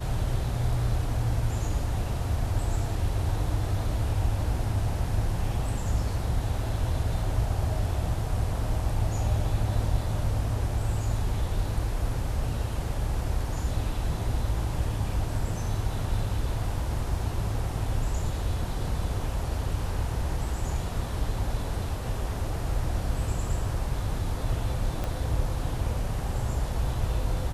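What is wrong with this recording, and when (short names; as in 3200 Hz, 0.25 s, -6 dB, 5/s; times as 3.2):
25.04 pop -18 dBFS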